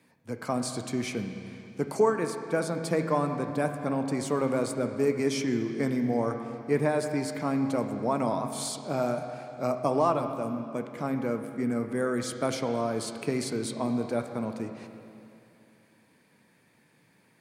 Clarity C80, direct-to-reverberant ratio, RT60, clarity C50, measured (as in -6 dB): 8.0 dB, 6.0 dB, 2.7 s, 7.0 dB